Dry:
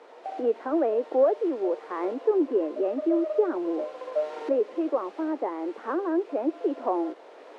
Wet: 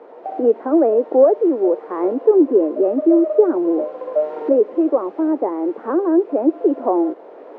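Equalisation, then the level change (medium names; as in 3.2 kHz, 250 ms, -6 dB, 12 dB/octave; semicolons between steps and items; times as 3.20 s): tilt EQ -4.5 dB/octave; bass shelf 220 Hz -9.5 dB; treble shelf 2.2 kHz -8 dB; +7.0 dB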